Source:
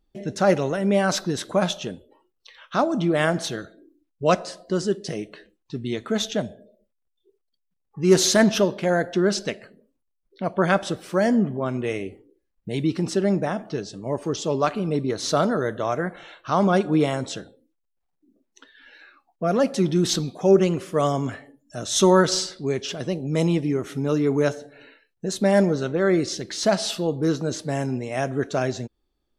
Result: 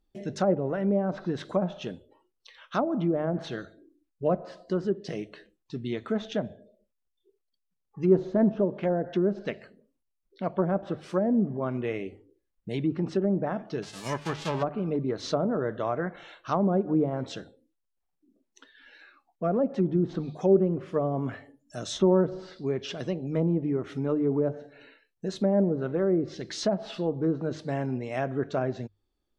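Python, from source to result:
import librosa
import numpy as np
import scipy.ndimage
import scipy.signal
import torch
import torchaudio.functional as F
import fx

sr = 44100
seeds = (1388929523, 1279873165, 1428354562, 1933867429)

y = fx.envelope_flatten(x, sr, power=0.3, at=(13.82, 14.62), fade=0.02)
y = fx.env_lowpass_down(y, sr, base_hz=620.0, full_db=-16.5)
y = fx.hum_notches(y, sr, base_hz=50, count=3)
y = F.gain(torch.from_numpy(y), -4.0).numpy()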